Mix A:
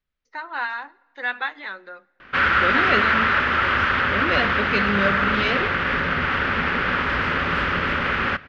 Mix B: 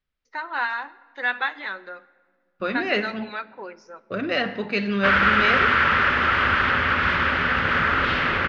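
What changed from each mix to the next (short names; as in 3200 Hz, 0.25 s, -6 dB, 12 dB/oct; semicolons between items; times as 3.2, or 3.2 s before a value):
first voice: send +9.0 dB; background: entry +2.70 s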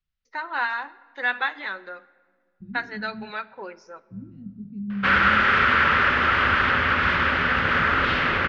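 second voice: add inverse Chebyshev low-pass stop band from 510 Hz, stop band 50 dB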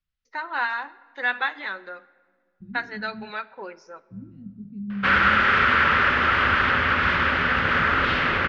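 second voice: send -6.5 dB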